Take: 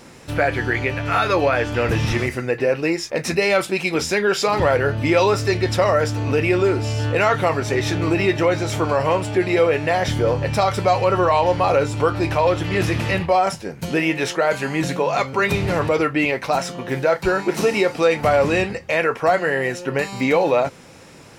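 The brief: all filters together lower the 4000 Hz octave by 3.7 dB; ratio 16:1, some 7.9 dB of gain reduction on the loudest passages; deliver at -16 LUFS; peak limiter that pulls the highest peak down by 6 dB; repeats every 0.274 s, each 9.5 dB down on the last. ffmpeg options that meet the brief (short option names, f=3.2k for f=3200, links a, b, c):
-af "equalizer=f=4k:t=o:g=-5,acompressor=threshold=-20dB:ratio=16,alimiter=limit=-16.5dB:level=0:latency=1,aecho=1:1:274|548|822|1096:0.335|0.111|0.0365|0.012,volume=10dB"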